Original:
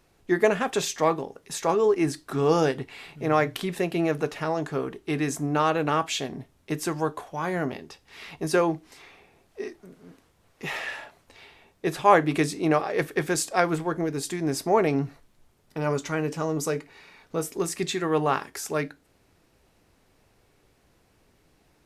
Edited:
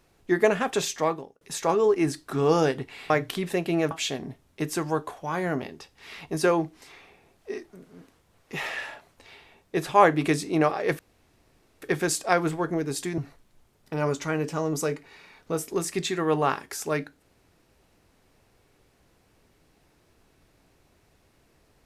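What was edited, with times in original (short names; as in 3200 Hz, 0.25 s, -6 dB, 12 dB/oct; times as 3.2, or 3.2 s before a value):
0.75–1.41 fade out equal-power
3.1–3.36 cut
4.17–6.01 cut
13.09 insert room tone 0.83 s
14.45–15.02 cut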